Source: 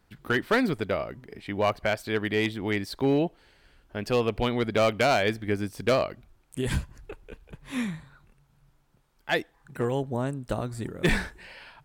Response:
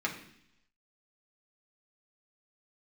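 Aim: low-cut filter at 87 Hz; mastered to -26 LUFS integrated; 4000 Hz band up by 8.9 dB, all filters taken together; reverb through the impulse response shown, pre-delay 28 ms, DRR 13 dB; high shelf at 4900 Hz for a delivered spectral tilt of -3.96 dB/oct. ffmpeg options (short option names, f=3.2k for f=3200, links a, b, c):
-filter_complex "[0:a]highpass=87,equalizer=f=4k:t=o:g=7.5,highshelf=f=4.9k:g=9,asplit=2[a][b];[1:a]atrim=start_sample=2205,adelay=28[c];[b][c]afir=irnorm=-1:irlink=0,volume=-19.5dB[d];[a][d]amix=inputs=2:normalize=0"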